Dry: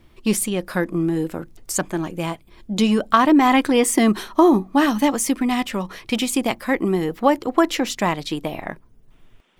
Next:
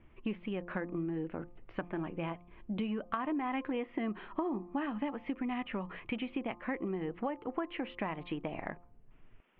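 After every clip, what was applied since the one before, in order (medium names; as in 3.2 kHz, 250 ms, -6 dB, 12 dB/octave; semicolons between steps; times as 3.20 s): steep low-pass 2.9 kHz 48 dB/octave; de-hum 175.1 Hz, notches 7; compression 5:1, threshold -26 dBFS, peak gain reduction 14.5 dB; trim -7.5 dB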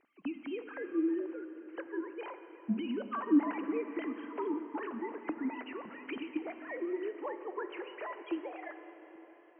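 formants replaced by sine waves; plate-style reverb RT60 4.8 s, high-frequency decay 0.75×, DRR 8 dB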